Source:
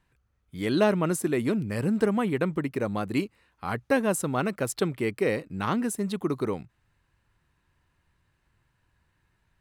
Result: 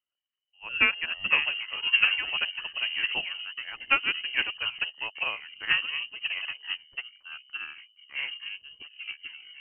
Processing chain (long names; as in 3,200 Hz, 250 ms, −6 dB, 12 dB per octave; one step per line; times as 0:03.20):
dynamic equaliser 1,800 Hz, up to +5 dB, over −43 dBFS, Q 0.81
delay with pitch and tempo change per echo 165 ms, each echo −6 semitones, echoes 3
voice inversion scrambler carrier 3,000 Hz
expander for the loud parts 2.5 to 1, over −33 dBFS